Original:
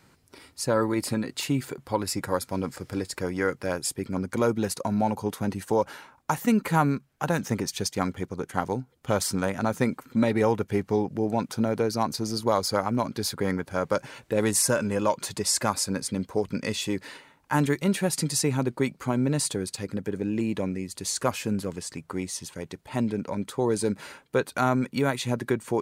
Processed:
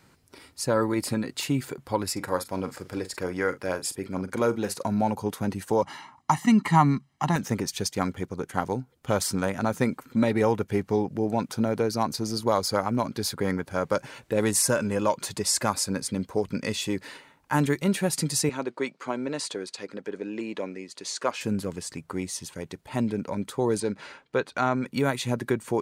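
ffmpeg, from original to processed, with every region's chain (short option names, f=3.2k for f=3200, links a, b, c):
-filter_complex "[0:a]asettb=1/sr,asplit=3[a][b][c];[a]atrim=end=2.124[d];[b]atrim=start=2.12:end=4.84,asetpts=PTS-STARTPTS,afade=t=in:d=0.004:c=qsin,afade=t=out:st=2.716:d=0.004:c=qsin,bass=f=250:g=-5,treble=f=4k:g=-2,asplit=2[e][f];[f]adelay=43,volume=-12.5dB[g];[e][g]amix=inputs=2:normalize=0,atrim=end_sample=119952[h];[c]atrim=start=4.836[i];[d][h]acrossfade=d=0.004:c1=hsin:c2=qsin[j];[j][i]acrossfade=d=0.004:c1=qsin:c2=hsin,asettb=1/sr,asplit=3[k][l][m];[k]atrim=end=5.824[n];[l]atrim=start=5.82:end=7.36,asetpts=PTS-STARTPTS,afade=t=in:d=0.004:c=qsin,afade=t=out:st=1.536:d=0.004:c=qsin,highpass=110,lowpass=7.6k,aecho=1:1:1:0.92,atrim=end_sample=67914[o];[m]atrim=start=7.356[p];[n][o]acrossfade=d=0.004:c1=hsin:c2=qsin[q];[q][p]acrossfade=d=0.004:c1=qsin:c2=hsin,asettb=1/sr,asplit=3[r][s][t];[r]atrim=end=18.494[u];[s]atrim=start=18.49:end=21.41,asetpts=PTS-STARTPTS,afade=t=in:d=0.004:c=qsin,afade=t=out:st=2.916:d=0.004:c=qsin,highpass=360,lowpass=5.8k,bandreject=f=800:w=18[v];[t]atrim=start=21.406[w];[u][v]acrossfade=d=0.004:c1=hsin:c2=qsin[x];[x][w]acrossfade=d=0.004:c1=qsin:c2=hsin,asettb=1/sr,asplit=3[y][z][aa];[y]atrim=end=23.804[ab];[z]atrim=start=23.8:end=24.86,asetpts=PTS-STARTPTS,afade=t=in:d=0.004:c=qsin,afade=t=out:st=1.056:d=0.004:c=qsin,lowpass=5.3k,lowshelf=f=270:g=-5.5[ac];[aa]atrim=start=24.856[ad];[ab][ac]acrossfade=d=0.004:c1=hsin:c2=qsin[ae];[ae][ad]acrossfade=d=0.004:c1=qsin:c2=hsin"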